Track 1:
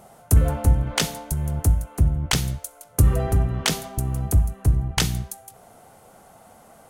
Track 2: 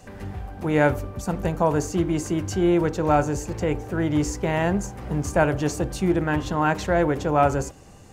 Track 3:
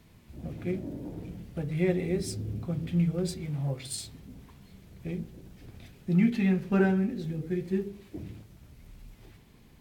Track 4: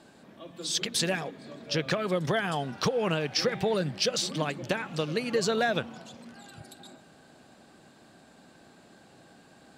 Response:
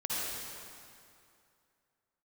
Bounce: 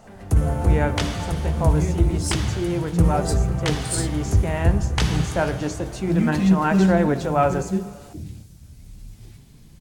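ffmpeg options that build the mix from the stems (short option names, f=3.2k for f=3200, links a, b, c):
-filter_complex "[0:a]highshelf=f=4.8k:g=-11,volume=1dB,asplit=2[a][b];[b]volume=-6dB[c];[1:a]volume=-0.5dB,asplit=2[d][e];[e]volume=-20.5dB[f];[2:a]bass=f=250:g=11,treble=f=4k:g=13,adynamicequalizer=threshold=0.00158:dfrequency=3700:dqfactor=0.7:tfrequency=3700:tqfactor=0.7:attack=5:release=100:ratio=0.375:range=3.5:mode=boostabove:tftype=highshelf,volume=-2dB[g];[3:a]adelay=1450,volume=-17.5dB[h];[4:a]atrim=start_sample=2205[i];[c][f]amix=inputs=2:normalize=0[j];[j][i]afir=irnorm=-1:irlink=0[k];[a][d][g][h][k]amix=inputs=5:normalize=0,dynaudnorm=f=660:g=3:m=6.5dB,equalizer=f=14k:w=2.1:g=-12.5,flanger=delay=4.3:depth=9.6:regen=69:speed=0.3:shape=triangular"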